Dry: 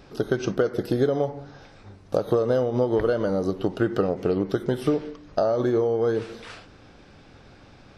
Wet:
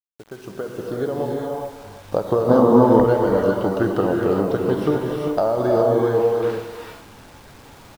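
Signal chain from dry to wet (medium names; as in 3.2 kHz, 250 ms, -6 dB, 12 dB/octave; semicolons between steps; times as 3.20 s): fade-in on the opening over 1.83 s; low-pass 4 kHz 6 dB/octave; peaking EQ 950 Hz +8.5 dB 0.46 oct; gated-style reverb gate 440 ms rising, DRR -0.5 dB; bit crusher 8-bit; 2.48–3.04 s: fifteen-band graphic EQ 100 Hz +4 dB, 250 Hz +12 dB, 1 kHz +8 dB, 2.5 kHz -5 dB; speakerphone echo 330 ms, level -15 dB; trim +1 dB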